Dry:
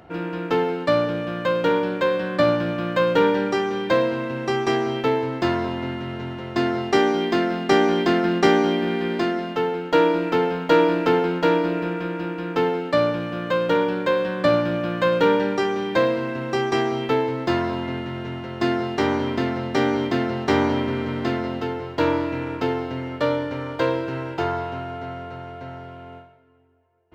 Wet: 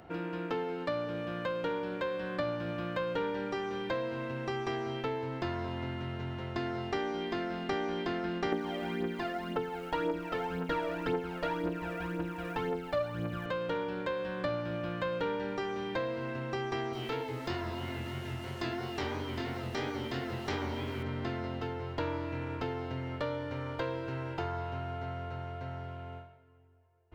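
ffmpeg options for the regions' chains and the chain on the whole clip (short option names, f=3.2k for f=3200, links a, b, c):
-filter_complex "[0:a]asettb=1/sr,asplit=3[a][b][c];[a]atrim=end=8.524[d];[b]atrim=start=8.52:end=13.46,asetpts=PTS-STARTPTS,afade=t=in:d=0.004:c=qsin,afade=t=out:st=4.936:d=0.004:c=qsin,highshelf=f=5.3k:g=-5,acrusher=bits=6:mode=log:mix=0:aa=0.000001,aphaser=in_gain=1:out_gain=1:delay=1.8:decay=0.6:speed=1.9:type=triangular[e];[c]atrim=start=13.456[f];[d][e]acrossfade=d=0.004:c1=hsin:c2=qsin[g];[g][f]acrossfade=d=0.004:c1=qsin:c2=hsin,asettb=1/sr,asplit=3[h][i][j];[h]atrim=end=16.934[k];[i]atrim=start=16.93:end=21.03,asetpts=PTS-STARTPTS,afade=t=in:d=0.004:c=qsin,afade=t=out:st=4.096:d=0.004:c=qsin,aemphasis=mode=production:type=75kf,flanger=delay=19.5:depth=6.7:speed=3,acrusher=bits=6:mix=0:aa=0.5[l];[j]atrim=start=21.026[m];[k][l]acrossfade=d=0.004:c1=hsin:c2=qsin[n];[n][m]acrossfade=d=0.004:c1=qsin:c2=hsin,acrossover=split=5400[o][p];[p]acompressor=threshold=-53dB:ratio=4:attack=1:release=60[q];[o][q]amix=inputs=2:normalize=0,asubboost=boost=4:cutoff=100,acompressor=threshold=-30dB:ratio=2.5,volume=-5dB"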